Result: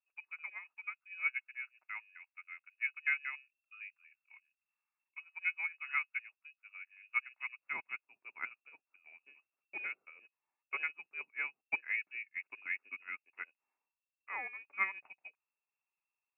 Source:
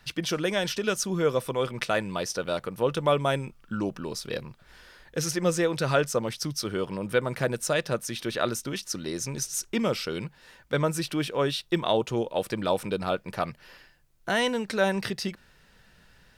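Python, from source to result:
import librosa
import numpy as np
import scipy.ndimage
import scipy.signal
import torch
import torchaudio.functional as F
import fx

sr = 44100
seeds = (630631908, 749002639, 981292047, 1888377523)

y = fx.freq_invert(x, sr, carrier_hz=2700)
y = fx.highpass(y, sr, hz=fx.steps((0.0, 1300.0), (7.59, 310.0)), slope=12)
y = fx.upward_expand(y, sr, threshold_db=-40.0, expansion=2.5)
y = y * librosa.db_to_amplitude(-8.0)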